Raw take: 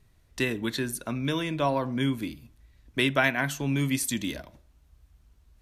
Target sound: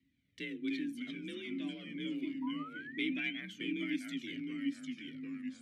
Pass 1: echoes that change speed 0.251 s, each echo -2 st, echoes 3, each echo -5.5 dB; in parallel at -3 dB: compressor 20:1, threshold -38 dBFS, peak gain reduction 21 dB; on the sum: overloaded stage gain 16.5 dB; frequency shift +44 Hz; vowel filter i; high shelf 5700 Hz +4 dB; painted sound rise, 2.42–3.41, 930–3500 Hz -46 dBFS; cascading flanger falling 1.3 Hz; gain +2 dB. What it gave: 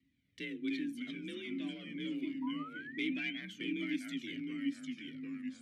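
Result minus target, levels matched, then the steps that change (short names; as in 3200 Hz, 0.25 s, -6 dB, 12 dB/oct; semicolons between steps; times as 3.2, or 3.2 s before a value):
overloaded stage: distortion +17 dB
change: overloaded stage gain 10 dB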